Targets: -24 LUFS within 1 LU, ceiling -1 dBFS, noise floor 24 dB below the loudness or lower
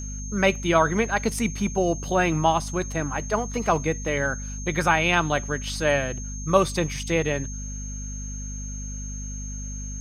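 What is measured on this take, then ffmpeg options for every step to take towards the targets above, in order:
hum 50 Hz; highest harmonic 250 Hz; hum level -31 dBFS; steady tone 6.4 kHz; tone level -37 dBFS; loudness -25.0 LUFS; peak level -3.5 dBFS; loudness target -24.0 LUFS
-> -af "bandreject=f=50:t=h:w=6,bandreject=f=100:t=h:w=6,bandreject=f=150:t=h:w=6,bandreject=f=200:t=h:w=6,bandreject=f=250:t=h:w=6"
-af "bandreject=f=6400:w=30"
-af "volume=1.12"

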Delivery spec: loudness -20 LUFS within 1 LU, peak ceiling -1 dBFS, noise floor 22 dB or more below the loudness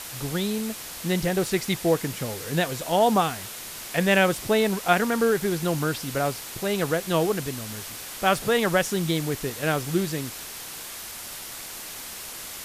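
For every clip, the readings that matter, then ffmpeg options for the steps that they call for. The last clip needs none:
noise floor -38 dBFS; noise floor target -48 dBFS; loudness -25.5 LUFS; peak level -6.0 dBFS; loudness target -20.0 LUFS
-> -af "afftdn=nr=10:nf=-38"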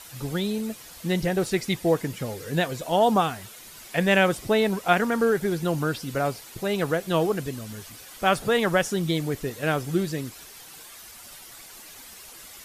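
noise floor -45 dBFS; noise floor target -47 dBFS
-> -af "afftdn=nr=6:nf=-45"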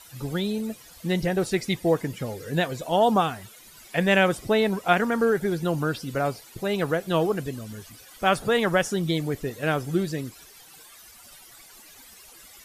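noise floor -50 dBFS; loudness -25.0 LUFS; peak level -6.5 dBFS; loudness target -20.0 LUFS
-> -af "volume=1.78"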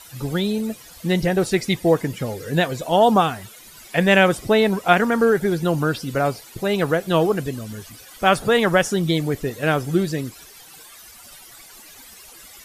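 loudness -20.0 LUFS; peak level -1.5 dBFS; noise floor -45 dBFS

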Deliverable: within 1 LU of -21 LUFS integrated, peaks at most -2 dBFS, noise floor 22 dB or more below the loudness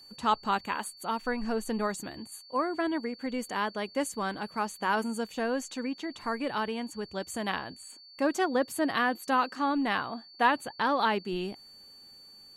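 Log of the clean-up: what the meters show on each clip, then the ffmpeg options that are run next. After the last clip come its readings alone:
steady tone 4.5 kHz; tone level -50 dBFS; loudness -31.0 LUFS; peak level -13.0 dBFS; loudness target -21.0 LUFS
-> -af "bandreject=f=4500:w=30"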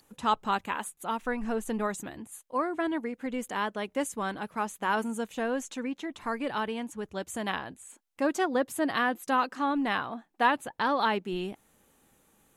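steady tone not found; loudness -31.0 LUFS; peak level -13.0 dBFS; loudness target -21.0 LUFS
-> -af "volume=3.16"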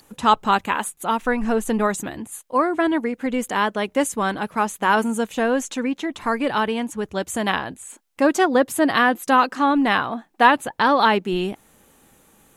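loudness -21.0 LUFS; peak level -3.0 dBFS; noise floor -59 dBFS

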